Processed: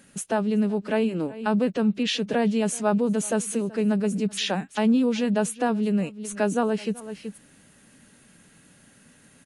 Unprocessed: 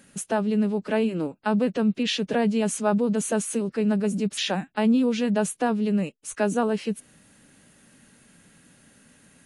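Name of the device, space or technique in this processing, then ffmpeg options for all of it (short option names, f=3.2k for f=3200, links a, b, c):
ducked delay: -filter_complex "[0:a]asplit=3[a][b][c];[b]adelay=378,volume=-8dB[d];[c]apad=whole_len=433586[e];[d][e]sidechaincompress=threshold=-42dB:ratio=6:attack=7.7:release=160[f];[a][f]amix=inputs=2:normalize=0"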